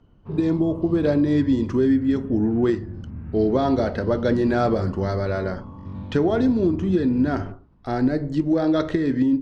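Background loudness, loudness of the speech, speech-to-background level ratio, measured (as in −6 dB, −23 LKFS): −36.0 LKFS, −22.0 LKFS, 14.0 dB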